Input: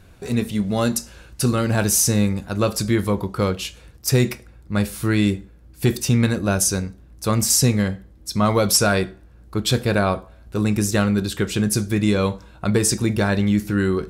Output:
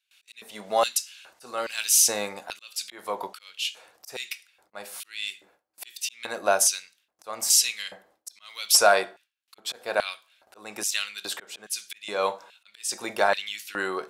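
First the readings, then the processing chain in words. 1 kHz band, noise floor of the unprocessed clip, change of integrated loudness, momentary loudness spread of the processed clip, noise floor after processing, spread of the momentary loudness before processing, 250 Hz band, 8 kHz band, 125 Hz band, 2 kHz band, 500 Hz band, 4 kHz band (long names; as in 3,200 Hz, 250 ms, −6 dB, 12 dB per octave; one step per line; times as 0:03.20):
−1.0 dB, −48 dBFS, −4.5 dB, 21 LU, −78 dBFS, 11 LU, −25.0 dB, −2.0 dB, below −35 dB, −2.5 dB, −6.0 dB, −1.0 dB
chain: volume swells 363 ms
noise gate with hold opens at −38 dBFS
auto-filter high-pass square 1.2 Hz 710–2,900 Hz
level −1.5 dB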